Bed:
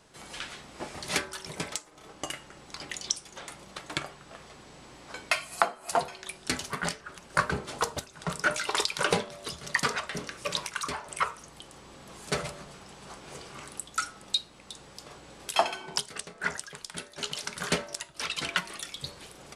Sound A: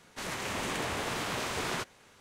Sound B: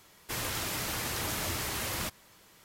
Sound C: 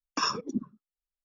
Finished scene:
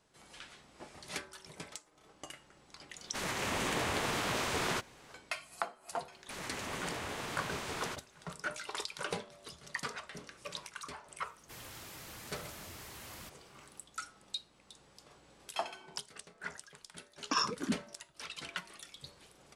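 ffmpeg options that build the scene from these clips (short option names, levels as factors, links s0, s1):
-filter_complex "[1:a]asplit=2[s0][s1];[0:a]volume=0.251[s2];[2:a]asoftclip=type=tanh:threshold=0.0473[s3];[s0]atrim=end=2.2,asetpts=PTS-STARTPTS,afade=t=in:d=0.004:c=hsin,afade=t=out:st=2.196:d=0.004:c=hsin,adelay=2970[s4];[s1]atrim=end=2.2,asetpts=PTS-STARTPTS,volume=0.473,afade=t=in:d=0.004:c=hsin,afade=t=out:st=2.196:d=0.004:c=hsin,adelay=6120[s5];[s3]atrim=end=2.64,asetpts=PTS-STARTPTS,volume=0.2,afade=t=in:d=0.004:c=hsin,afade=t=out:st=2.636:d=0.004:c=hsin,adelay=11200[s6];[3:a]atrim=end=1.24,asetpts=PTS-STARTPTS,volume=0.708,afade=t=in:d=0.004:c=hsin,afade=t=out:st=1.236:d=0.004:c=hsin,adelay=17140[s7];[s2][s4][s5][s6][s7]amix=inputs=5:normalize=0"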